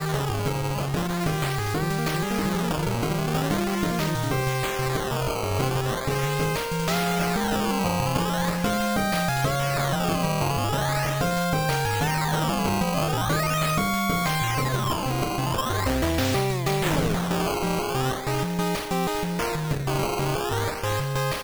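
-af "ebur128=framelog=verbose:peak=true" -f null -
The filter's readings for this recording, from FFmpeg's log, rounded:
Integrated loudness:
  I:         -24.9 LUFS
  Threshold: -34.9 LUFS
Loudness range:
  LRA:         1.9 LU
  Threshold: -44.8 LUFS
  LRA low:   -25.9 LUFS
  LRA high:  -23.9 LUFS
True peak:
  Peak:       -9.0 dBFS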